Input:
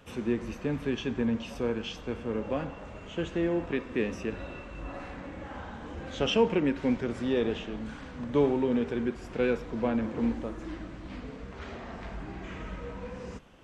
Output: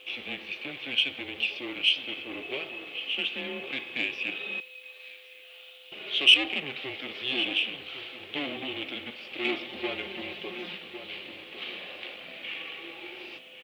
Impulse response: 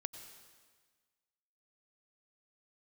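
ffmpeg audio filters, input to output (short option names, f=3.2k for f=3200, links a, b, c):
-filter_complex "[0:a]equalizer=f=2.1k:w=4.9:g=-5,aeval=exprs='(tanh(20*val(0)+0.5)-tanh(0.5))/20':c=same,asettb=1/sr,asplit=3[a][b][c];[a]atrim=end=9.444[d];[b]atrim=start=9.44:end=10.77,asetpts=PTS-STARTPTS,afade=t=in:d=0.004:c=qsin,afade=t=out:st=1.326:d=0.004:c=qsin,aecho=1:1:5.8:0.99,atrim=end_sample=58653[e];[c]atrim=start=10.766[f];[d][e]acrossfade=d=0.004:c1=hsin:c2=qsin[g];[g][f]acrossfade=d=0.004:c1=qsin:c2=hsin,highpass=f=480:t=q:w=0.5412,highpass=f=480:t=q:w=1.307,lowpass=f=3.3k:t=q:w=0.5176,lowpass=f=3.3k:t=q:w=0.7071,lowpass=f=3.3k:t=q:w=1.932,afreqshift=-140,bandreject=f=960:w=6,asplit=2[h][i];[i]adelay=1105,lowpass=f=2.2k:p=1,volume=-10dB,asplit=2[j][k];[k]adelay=1105,lowpass=f=2.2k:p=1,volume=0.26,asplit=2[l][m];[m]adelay=1105,lowpass=f=2.2k:p=1,volume=0.26[n];[j][l][n]amix=inputs=3:normalize=0[o];[h][o]amix=inputs=2:normalize=0,aexciter=amount=7.6:drive=9.5:freq=2.3k,acrusher=bits=10:mix=0:aa=0.000001,asettb=1/sr,asplit=3[p][q][r];[p]atrim=end=4.604[s];[q]atrim=start=4.6:end=5.92,asetpts=PTS-STARTPTS,afade=t=in:d=0.004:c=qsin,afade=t=out:st=1.316:d=0.004:c=qsin,aderivative[t];[r]atrim=start=5.916[u];[s][t]acrossfade=d=0.004:c1=hsin:c2=qsin[v];[v][u]acrossfade=d=0.004:c1=qsin:c2=hsin,aeval=exprs='val(0)+0.00141*sin(2*PI*510*n/s)':c=same"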